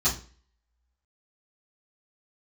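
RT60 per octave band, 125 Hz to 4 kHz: 0.40 s, 0.45 s, 0.40 s, 0.40 s, 0.40 s, 0.35 s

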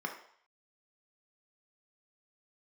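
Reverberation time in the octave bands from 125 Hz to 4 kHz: 0.35 s, 0.40 s, 0.55 s, 0.65 s, 0.60 s, 0.60 s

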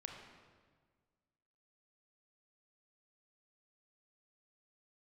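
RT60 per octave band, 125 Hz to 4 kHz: 1.9 s, 1.9 s, 1.7 s, 1.5 s, 1.3 s, 1.2 s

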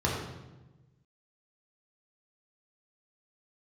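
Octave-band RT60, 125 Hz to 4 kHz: 1.7 s, 1.5 s, 1.2 s, 1.0 s, 0.90 s, 0.80 s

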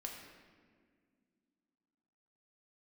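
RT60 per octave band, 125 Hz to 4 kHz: 2.6 s, 3.3 s, 2.2 s, 1.6 s, 1.6 s, 1.1 s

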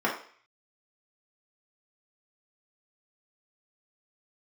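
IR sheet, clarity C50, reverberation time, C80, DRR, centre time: 6.5 dB, 0.50 s, 11.0 dB, -4.5 dB, 26 ms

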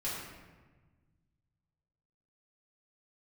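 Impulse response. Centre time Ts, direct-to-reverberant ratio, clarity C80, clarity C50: 78 ms, -9.0 dB, 2.5 dB, 0.5 dB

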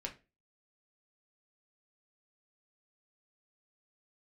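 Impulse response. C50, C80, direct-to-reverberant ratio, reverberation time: 14.0 dB, 20.5 dB, 0.5 dB, 0.30 s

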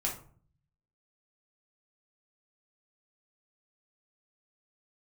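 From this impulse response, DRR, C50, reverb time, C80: -2.5 dB, 7.5 dB, 0.50 s, 14.0 dB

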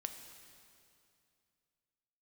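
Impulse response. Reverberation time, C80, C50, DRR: 2.5 s, 8.5 dB, 7.5 dB, 6.0 dB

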